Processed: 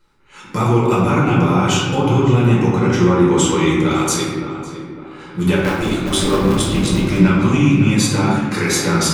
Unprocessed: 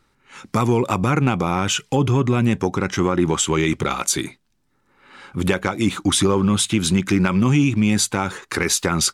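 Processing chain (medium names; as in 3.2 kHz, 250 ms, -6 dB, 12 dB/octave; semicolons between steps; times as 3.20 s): 5.56–7.18 s: cycle switcher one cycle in 3, muted; tape echo 556 ms, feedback 46%, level -10 dB, low-pass 1.8 kHz; reverberation RT60 1.4 s, pre-delay 5 ms, DRR -6.5 dB; trim -5.5 dB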